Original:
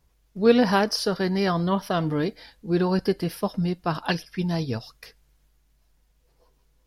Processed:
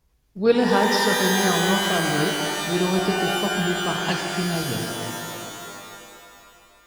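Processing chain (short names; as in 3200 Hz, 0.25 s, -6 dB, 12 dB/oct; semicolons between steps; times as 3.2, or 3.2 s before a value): shimmer reverb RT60 2.6 s, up +12 st, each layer -2 dB, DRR 2 dB; gain -1.5 dB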